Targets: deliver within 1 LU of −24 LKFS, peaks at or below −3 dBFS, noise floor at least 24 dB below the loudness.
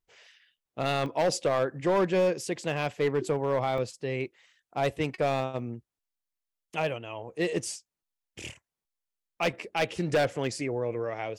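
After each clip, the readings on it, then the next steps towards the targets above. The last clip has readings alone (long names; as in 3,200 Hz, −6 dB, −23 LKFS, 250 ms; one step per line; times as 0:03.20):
share of clipped samples 1.4%; peaks flattened at −19.5 dBFS; number of dropouts 3; longest dropout 1.3 ms; integrated loudness −29.5 LKFS; sample peak −19.5 dBFS; target loudness −24.0 LKFS
→ clipped peaks rebuilt −19.5 dBFS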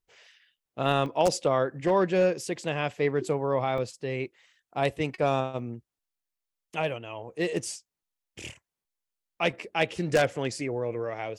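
share of clipped samples 0.0%; number of dropouts 3; longest dropout 1.3 ms
→ repair the gap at 0:01.06/0:03.78/0:05.59, 1.3 ms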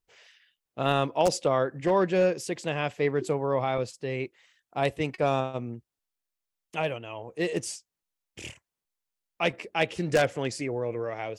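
number of dropouts 0; integrated loudness −28.5 LKFS; sample peak −10.5 dBFS; target loudness −24.0 LKFS
→ level +4.5 dB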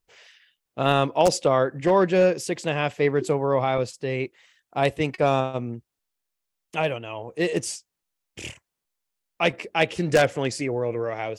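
integrated loudness −24.0 LKFS; sample peak −6.0 dBFS; background noise floor −84 dBFS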